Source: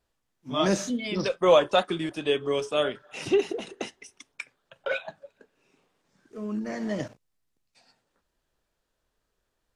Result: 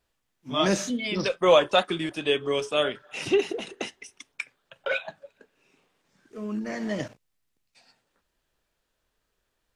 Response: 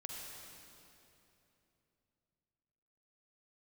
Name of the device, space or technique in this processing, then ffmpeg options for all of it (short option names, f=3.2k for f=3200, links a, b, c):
presence and air boost: -af "equalizer=f=2.5k:t=o:w=1.5:g=4,highshelf=f=9.3k:g=4"